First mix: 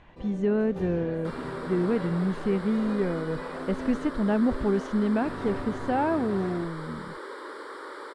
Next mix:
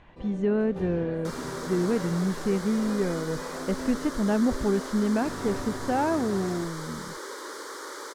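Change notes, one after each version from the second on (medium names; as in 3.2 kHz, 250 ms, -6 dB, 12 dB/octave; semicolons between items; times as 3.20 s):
second sound: remove boxcar filter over 7 samples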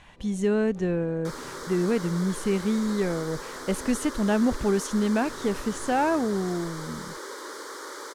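speech: remove tape spacing loss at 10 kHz 29 dB; first sound -10.0 dB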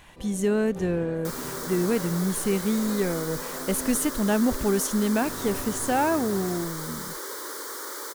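first sound +8.5 dB; master: remove distance through air 64 m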